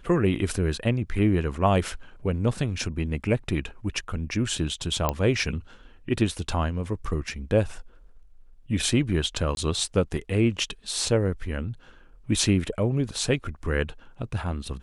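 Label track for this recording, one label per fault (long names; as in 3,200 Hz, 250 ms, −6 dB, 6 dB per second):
5.090000	5.090000	click −9 dBFS
9.550000	9.570000	drop-out 21 ms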